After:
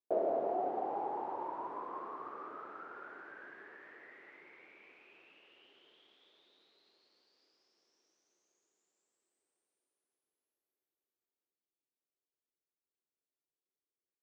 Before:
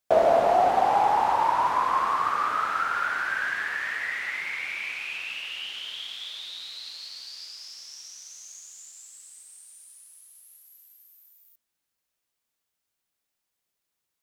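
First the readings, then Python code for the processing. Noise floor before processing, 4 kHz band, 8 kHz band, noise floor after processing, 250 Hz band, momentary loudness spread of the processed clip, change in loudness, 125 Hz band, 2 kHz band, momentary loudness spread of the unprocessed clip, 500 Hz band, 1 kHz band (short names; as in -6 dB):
-83 dBFS, -31.5 dB, under -35 dB, under -85 dBFS, -6.5 dB, 22 LU, -14.0 dB, n/a, -25.5 dB, 21 LU, -12.5 dB, -18.0 dB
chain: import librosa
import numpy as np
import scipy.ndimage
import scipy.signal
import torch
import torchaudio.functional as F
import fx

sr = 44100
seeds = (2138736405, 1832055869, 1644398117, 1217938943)

y = fx.bandpass_q(x, sr, hz=370.0, q=2.9)
y = F.gain(torch.from_numpy(y), -3.0).numpy()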